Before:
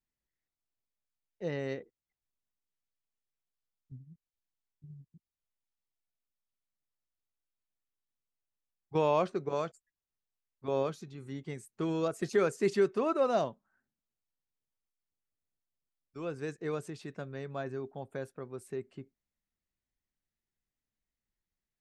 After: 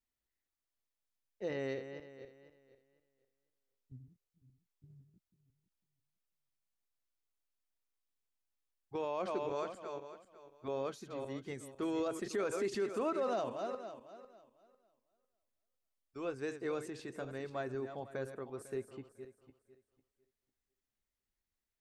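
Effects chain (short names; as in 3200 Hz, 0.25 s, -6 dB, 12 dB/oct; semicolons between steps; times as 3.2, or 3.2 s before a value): regenerating reverse delay 0.25 s, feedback 44%, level -10 dB; limiter -26 dBFS, peak gain reduction 10 dB; bell 160 Hz -15 dB 0.29 oct; gain -1 dB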